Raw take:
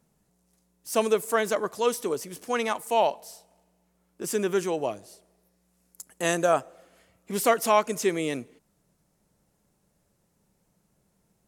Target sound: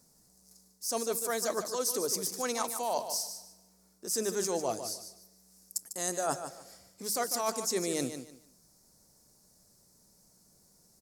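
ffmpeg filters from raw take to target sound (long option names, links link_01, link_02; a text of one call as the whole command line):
ffmpeg -i in.wav -af "highshelf=frequency=3700:width_type=q:width=3:gain=9,bandreject=frequency=50:width_type=h:width=6,bandreject=frequency=100:width_type=h:width=6,bandreject=frequency=150:width_type=h:width=6,bandreject=frequency=200:width_type=h:width=6,areverse,acompressor=threshold=-29dB:ratio=16,areverse,aecho=1:1:155|310|465:0.335|0.0804|0.0193,asetrate=45938,aresample=44100,volume=1dB" out.wav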